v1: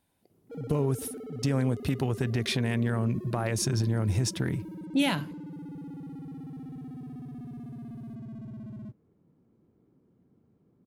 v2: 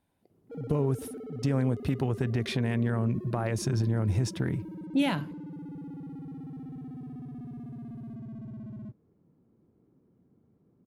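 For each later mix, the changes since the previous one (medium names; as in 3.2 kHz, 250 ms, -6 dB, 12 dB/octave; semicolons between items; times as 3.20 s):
master: add treble shelf 2.8 kHz -8.5 dB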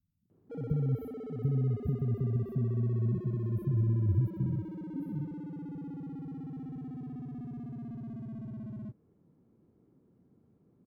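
speech: add inverse Chebyshev band-stop 600–7500 Hz, stop band 60 dB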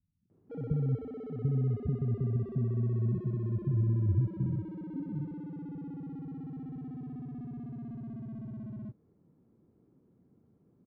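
master: add distance through air 160 m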